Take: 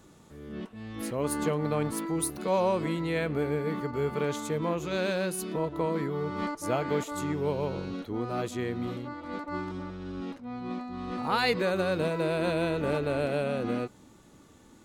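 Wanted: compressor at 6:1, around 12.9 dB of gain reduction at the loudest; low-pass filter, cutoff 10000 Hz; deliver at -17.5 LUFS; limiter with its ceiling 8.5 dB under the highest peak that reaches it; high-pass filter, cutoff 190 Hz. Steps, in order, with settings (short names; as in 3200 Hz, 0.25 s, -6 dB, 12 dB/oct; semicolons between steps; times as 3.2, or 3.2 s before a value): HPF 190 Hz; LPF 10000 Hz; compressor 6:1, threshold -36 dBFS; gain +24.5 dB; limiter -8 dBFS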